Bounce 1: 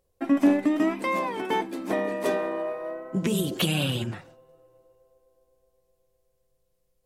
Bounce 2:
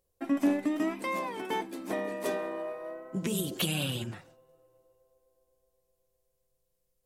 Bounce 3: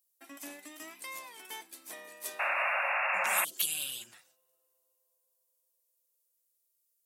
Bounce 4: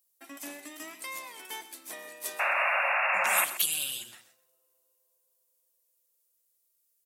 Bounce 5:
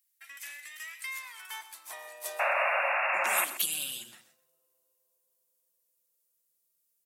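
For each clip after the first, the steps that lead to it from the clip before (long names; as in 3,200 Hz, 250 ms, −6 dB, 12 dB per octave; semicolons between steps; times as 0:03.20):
high-shelf EQ 5,100 Hz +7 dB; level −6.5 dB
first difference; sound drawn into the spectrogram noise, 0:02.39–0:03.45, 530–2,800 Hz −34 dBFS; level +3.5 dB
repeating echo 129 ms, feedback 17%, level −14 dB; level +3.5 dB
high-pass filter sweep 1,900 Hz → 160 Hz, 0:00.96–0:04.02; level −2.5 dB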